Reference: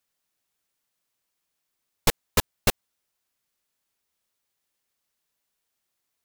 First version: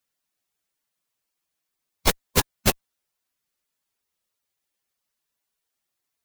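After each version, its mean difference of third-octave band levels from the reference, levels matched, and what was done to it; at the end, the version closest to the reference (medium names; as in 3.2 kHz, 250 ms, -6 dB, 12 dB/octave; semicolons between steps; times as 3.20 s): 1.5 dB: coarse spectral quantiser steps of 15 dB; in parallel at -7.5 dB: fuzz box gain 45 dB, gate -46 dBFS; on the sum: trim -1.5 dB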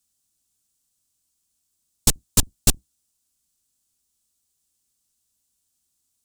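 5.5 dB: octave divider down 2 oct, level +2 dB; graphic EQ 250/500/1000/2000/8000 Hz +4/-9/-5/-11/+10 dB; trim +2.5 dB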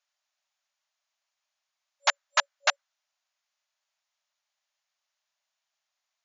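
22.0 dB: FFT band-pass 560–7200 Hz; dynamic bell 1.5 kHz, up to +7 dB, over -43 dBFS, Q 1.6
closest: first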